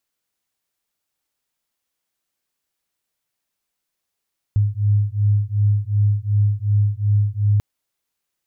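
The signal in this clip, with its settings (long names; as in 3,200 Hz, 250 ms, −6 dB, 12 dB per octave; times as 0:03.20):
two tones that beat 102 Hz, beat 2.7 Hz, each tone −18 dBFS 3.04 s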